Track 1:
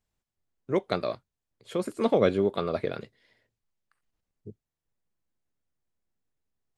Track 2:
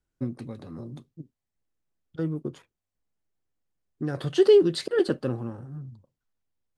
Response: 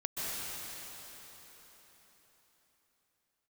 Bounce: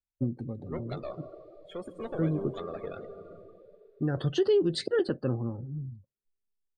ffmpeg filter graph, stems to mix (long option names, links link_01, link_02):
-filter_complex "[0:a]lowshelf=frequency=450:gain=-6.5,acompressor=threshold=-28dB:ratio=6,aeval=exprs='(tanh(28.2*val(0)+0.3)-tanh(0.3))/28.2':channel_layout=same,volume=-4dB,asplit=2[link_01][link_02];[link_02]volume=-6.5dB[link_03];[1:a]lowshelf=frequency=80:gain=10,volume=-0.5dB[link_04];[2:a]atrim=start_sample=2205[link_05];[link_03][link_05]afir=irnorm=-1:irlink=0[link_06];[link_01][link_04][link_06]amix=inputs=3:normalize=0,afftdn=noise_reduction=23:noise_floor=-44,alimiter=limit=-17.5dB:level=0:latency=1:release=248"